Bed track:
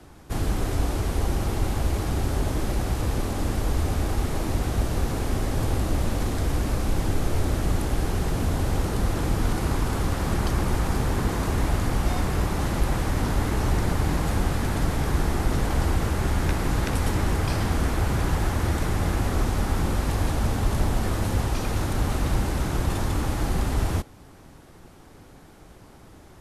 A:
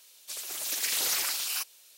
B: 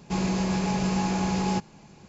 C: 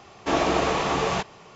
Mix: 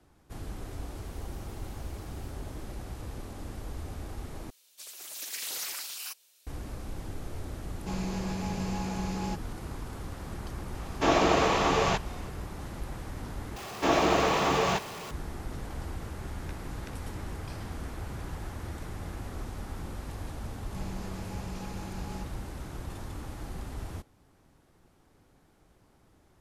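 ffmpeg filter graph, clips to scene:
-filter_complex "[1:a]asplit=2[s0][s1];[2:a]asplit=2[s2][s3];[3:a]asplit=2[s4][s5];[0:a]volume=0.188[s6];[s0]acompressor=threshold=0.00631:ratio=6:attack=3.2:release=140:knee=1:detection=peak[s7];[s5]aeval=exprs='val(0)+0.5*0.0188*sgn(val(0))':c=same[s8];[s6]asplit=3[s9][s10][s11];[s9]atrim=end=4.504[s12];[s1]atrim=end=1.97,asetpts=PTS-STARTPTS,volume=0.422[s13];[s10]atrim=start=6.466:end=13.564[s14];[s8]atrim=end=1.55,asetpts=PTS-STARTPTS,volume=0.75[s15];[s11]atrim=start=15.106[s16];[s7]atrim=end=1.97,asetpts=PTS-STARTPTS,volume=0.158,afade=t=in:d=0.004:c=hsin,afade=t=out:st=1.966:d=0.004:c=hsin,adelay=680[s17];[s2]atrim=end=2.08,asetpts=PTS-STARTPTS,volume=0.376,afade=t=in:d=0.004:c=hsin,afade=t=out:st=2.076:d=0.004:c=hsin,adelay=7760[s18];[s4]atrim=end=1.55,asetpts=PTS-STARTPTS,volume=0.891,afade=t=in:d=0.004:c=hsin,afade=t=out:st=1.546:d=0.004:c=hsin,adelay=10750[s19];[s3]atrim=end=2.08,asetpts=PTS-STARTPTS,volume=0.15,afade=t=in:d=0.004:c=hsin,afade=t=out:st=2.076:d=0.004:c=hsin,adelay=20640[s20];[s12][s13]acrossfade=d=0.004:c1=hsin:c2=hsin[s21];[s21][s14]acrossfade=d=0.004:c1=hsin:c2=hsin[s22];[s22][s15]acrossfade=d=0.004:c1=hsin:c2=hsin[s23];[s23][s16]acrossfade=d=0.004:c1=hsin:c2=hsin[s24];[s24][s17][s18][s19][s20]amix=inputs=5:normalize=0"

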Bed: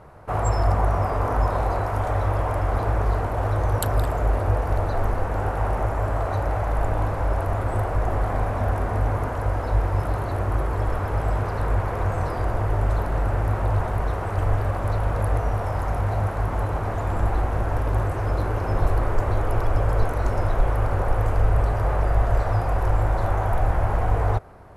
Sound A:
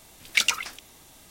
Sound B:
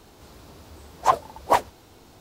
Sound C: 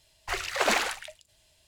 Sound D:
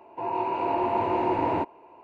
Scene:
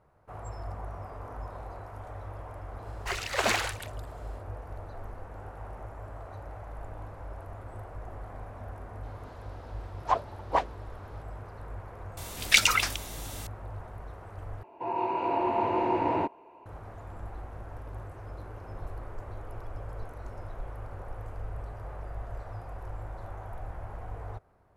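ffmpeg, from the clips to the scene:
-filter_complex "[0:a]volume=0.119[s0];[2:a]lowpass=4000[s1];[1:a]alimiter=level_in=4.73:limit=0.891:release=50:level=0:latency=1[s2];[s0]asplit=2[s3][s4];[s3]atrim=end=14.634[s5];[4:a]atrim=end=2.03,asetpts=PTS-STARTPTS,volume=0.794[s6];[s4]atrim=start=16.656[s7];[3:a]atrim=end=1.67,asetpts=PTS-STARTPTS,volume=0.794,afade=t=in:d=0.1,afade=t=out:st=1.57:d=0.1,adelay=2780[s8];[s1]atrim=end=2.2,asetpts=PTS-STARTPTS,volume=0.447,afade=t=in:d=0.004:c=hsin,afade=t=out:st=2.196:d=0.004:c=hsin,adelay=9030[s9];[s2]atrim=end=1.3,asetpts=PTS-STARTPTS,volume=0.596,afade=t=in:d=0.004:c=hsin,afade=t=out:st=1.296:d=0.004:c=hsin,adelay=12170[s10];[s5][s6]acrossfade=d=0.004:c1=hsin:c2=hsin[s11];[s11][s7]acrossfade=d=0.004:c1=hsin:c2=hsin[s12];[s12][s8][s9][s10]amix=inputs=4:normalize=0"

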